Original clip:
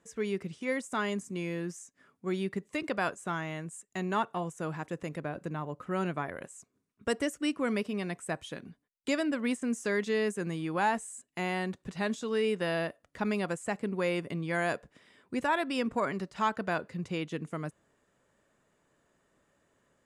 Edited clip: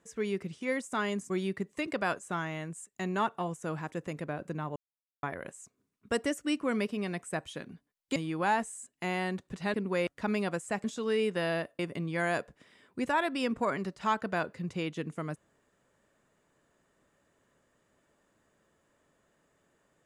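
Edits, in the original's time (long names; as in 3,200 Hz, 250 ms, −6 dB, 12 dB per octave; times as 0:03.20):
0:01.30–0:02.26: remove
0:05.72–0:06.19: silence
0:09.12–0:10.51: remove
0:12.09–0:13.04: swap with 0:13.81–0:14.14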